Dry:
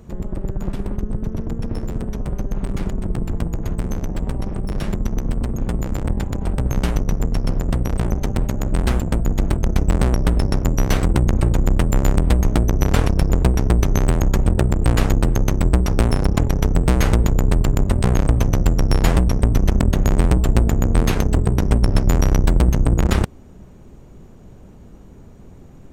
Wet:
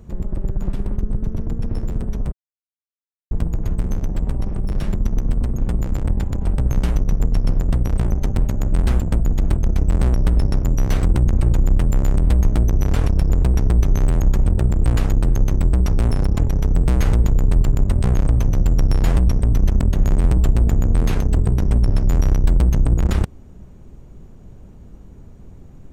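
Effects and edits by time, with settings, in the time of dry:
2.32–3.31 mute
whole clip: limiter -7.5 dBFS; low shelf 140 Hz +8 dB; gain -4 dB

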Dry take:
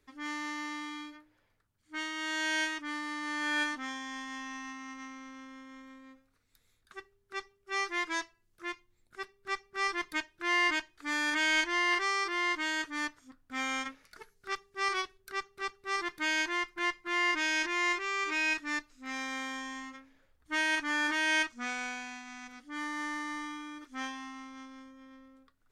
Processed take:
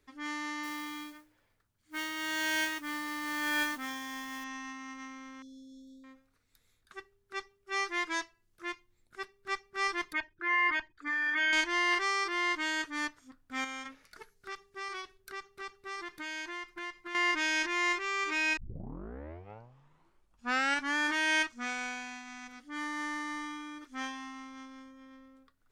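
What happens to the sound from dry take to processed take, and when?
0.63–4.44 modulation noise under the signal 14 dB
5.42–6.04 brick-wall FIR band-stop 530–3300 Hz
10.13–11.53 formant sharpening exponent 2
13.64–17.15 compressor 3:1, threshold -39 dBFS
18.57 tape start 2.40 s

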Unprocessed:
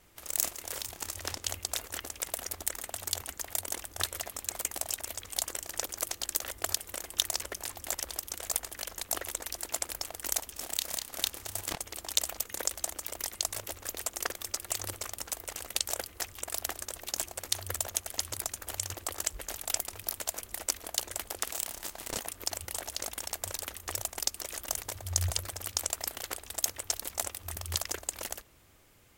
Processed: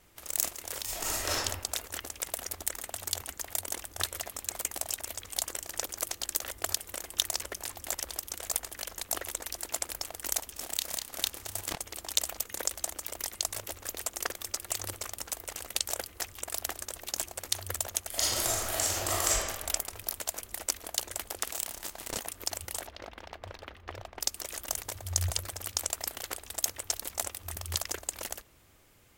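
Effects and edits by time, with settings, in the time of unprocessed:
0.84–1.35 reverb throw, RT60 0.92 s, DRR -8 dB
18.09–19.36 reverb throw, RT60 1.6 s, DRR -9 dB
22.87–24.21 air absorption 320 m

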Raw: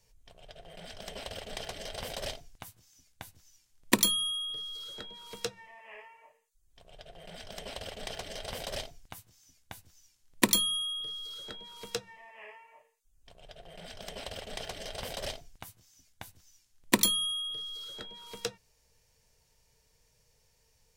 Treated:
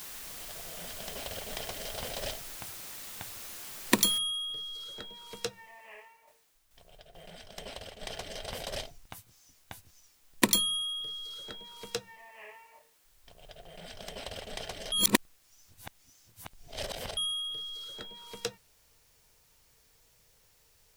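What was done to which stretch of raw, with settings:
4.18 noise floor step -44 dB -67 dB
5.84–8.11 tremolo saw down 2.3 Hz, depth 55%
14.92–17.17 reverse

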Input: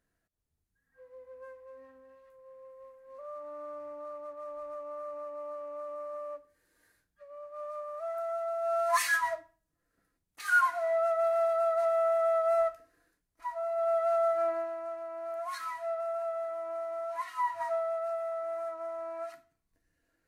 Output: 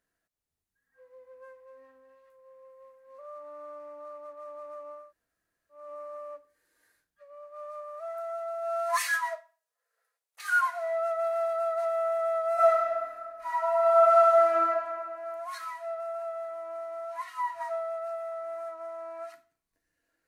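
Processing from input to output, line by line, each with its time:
5.01–5.81 room tone, crossfade 0.24 s
8.19–11.09 brick-wall FIR high-pass 410 Hz
12.54–14.68 reverb throw, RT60 2 s, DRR -10.5 dB
whole clip: low shelf 250 Hz -11 dB

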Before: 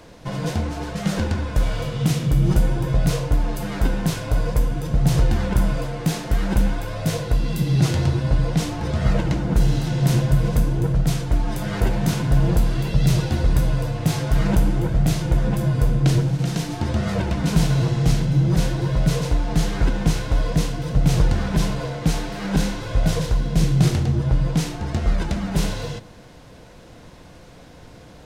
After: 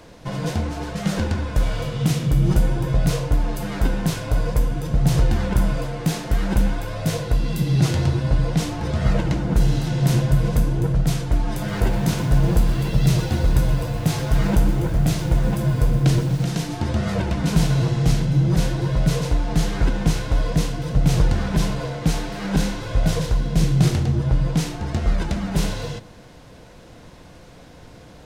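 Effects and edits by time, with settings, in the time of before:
11.48–16.45 lo-fi delay 0.124 s, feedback 80%, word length 6-bit, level -15 dB

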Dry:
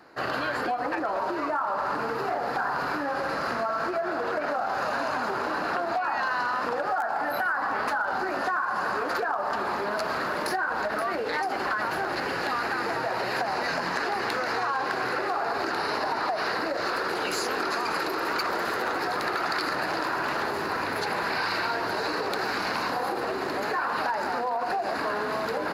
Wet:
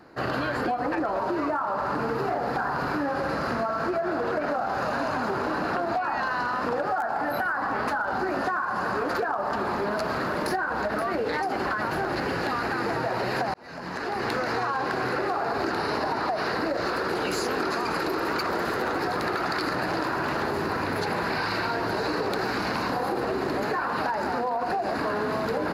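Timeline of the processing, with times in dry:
13.54–14.3 fade in
whole clip: low shelf 350 Hz +11.5 dB; gain -1.5 dB

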